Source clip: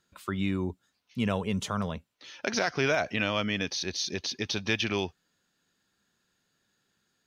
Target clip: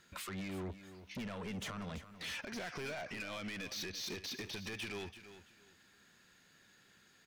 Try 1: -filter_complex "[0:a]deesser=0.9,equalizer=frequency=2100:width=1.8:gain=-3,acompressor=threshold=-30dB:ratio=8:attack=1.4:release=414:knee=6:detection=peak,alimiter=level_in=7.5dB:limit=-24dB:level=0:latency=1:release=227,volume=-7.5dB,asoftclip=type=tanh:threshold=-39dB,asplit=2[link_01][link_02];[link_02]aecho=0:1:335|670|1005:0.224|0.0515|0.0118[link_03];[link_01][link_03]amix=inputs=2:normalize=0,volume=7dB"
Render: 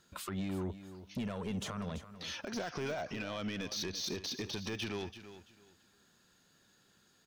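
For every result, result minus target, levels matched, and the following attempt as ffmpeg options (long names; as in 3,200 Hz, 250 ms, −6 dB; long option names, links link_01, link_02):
2,000 Hz band −4.0 dB; soft clipping: distortion −5 dB
-filter_complex "[0:a]deesser=0.9,equalizer=frequency=2100:width=1.8:gain=7,acompressor=threshold=-30dB:ratio=8:attack=1.4:release=414:knee=6:detection=peak,alimiter=level_in=7.5dB:limit=-24dB:level=0:latency=1:release=227,volume=-7.5dB,asoftclip=type=tanh:threshold=-39dB,asplit=2[link_01][link_02];[link_02]aecho=0:1:335|670|1005:0.224|0.0515|0.0118[link_03];[link_01][link_03]amix=inputs=2:normalize=0,volume=7dB"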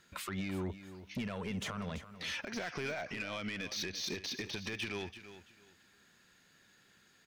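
soft clipping: distortion −6 dB
-filter_complex "[0:a]deesser=0.9,equalizer=frequency=2100:width=1.8:gain=7,acompressor=threshold=-30dB:ratio=8:attack=1.4:release=414:knee=6:detection=peak,alimiter=level_in=7.5dB:limit=-24dB:level=0:latency=1:release=227,volume=-7.5dB,asoftclip=type=tanh:threshold=-46dB,asplit=2[link_01][link_02];[link_02]aecho=0:1:335|670|1005:0.224|0.0515|0.0118[link_03];[link_01][link_03]amix=inputs=2:normalize=0,volume=7dB"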